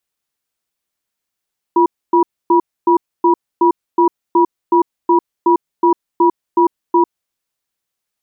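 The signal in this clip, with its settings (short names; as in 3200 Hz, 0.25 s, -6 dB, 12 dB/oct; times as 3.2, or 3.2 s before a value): cadence 345 Hz, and 969 Hz, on 0.10 s, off 0.27 s, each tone -10.5 dBFS 5.36 s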